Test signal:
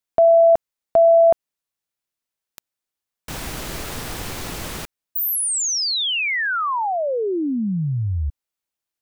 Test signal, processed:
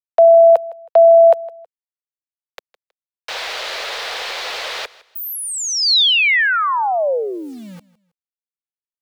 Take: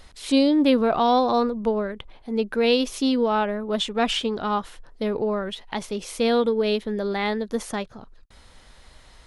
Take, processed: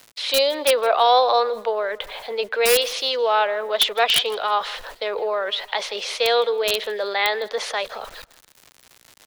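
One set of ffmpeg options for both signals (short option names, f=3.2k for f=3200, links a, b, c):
-filter_complex "[0:a]acrossover=split=310|1900[a][b][c];[a]acompressor=threshold=-38dB:ratio=2:attack=7:release=55:knee=2.83:detection=peak[d];[d][b][c]amix=inputs=3:normalize=0,acrossover=split=540 5600:gain=0.0631 1 0.158[e][f][g];[e][f][g]amix=inputs=3:normalize=0,agate=range=-24dB:threshold=-48dB:ratio=16:release=362:detection=rms,equalizer=f=125:t=o:w=1:g=-4,equalizer=f=250:t=o:w=1:g=-7,equalizer=f=500:t=o:w=1:g=10,equalizer=f=2k:t=o:w=1:g=4,equalizer=f=4k:t=o:w=1:g=8,acrusher=bits=10:mix=0:aa=0.000001,areverse,acompressor=mode=upward:threshold=-20dB:ratio=2.5:attack=0.38:release=76:knee=2.83:detection=peak,areverse,acrossover=split=250|980[h][i][j];[j]aeval=exprs='(mod(3.55*val(0)+1,2)-1)/3.55':c=same[k];[h][i][k]amix=inputs=3:normalize=0,aecho=1:1:160|320:0.0944|0.0283,volume=2dB"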